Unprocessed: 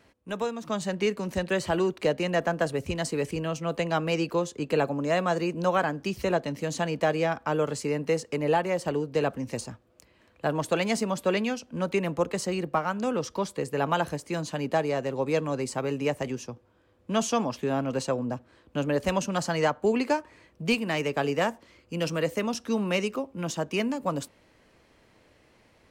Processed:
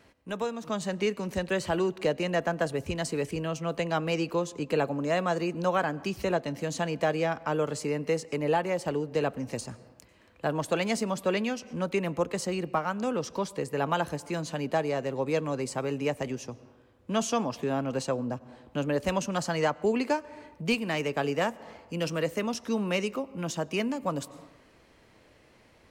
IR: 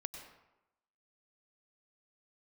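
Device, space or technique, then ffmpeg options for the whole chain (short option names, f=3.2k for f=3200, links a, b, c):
ducked reverb: -filter_complex "[0:a]asplit=3[a][b][c];[1:a]atrim=start_sample=2205[d];[b][d]afir=irnorm=-1:irlink=0[e];[c]apad=whole_len=1142588[f];[e][f]sidechaincompress=threshold=-46dB:ratio=3:attack=27:release=164,volume=-2.5dB[g];[a][g]amix=inputs=2:normalize=0,volume=-2.5dB"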